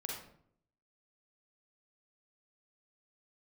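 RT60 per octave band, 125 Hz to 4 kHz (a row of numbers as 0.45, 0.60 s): 0.85, 0.80, 0.70, 0.60, 0.50, 0.40 s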